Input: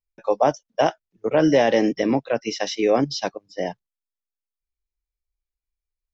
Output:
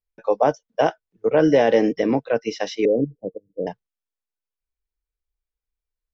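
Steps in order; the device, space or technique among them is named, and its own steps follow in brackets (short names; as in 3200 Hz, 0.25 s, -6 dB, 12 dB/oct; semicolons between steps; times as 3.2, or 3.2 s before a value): inside a helmet (high shelf 4400 Hz -9 dB; small resonant body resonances 460/1500 Hz, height 7 dB, ringing for 65 ms); 2.85–3.67 elliptic low-pass 520 Hz, stop band 70 dB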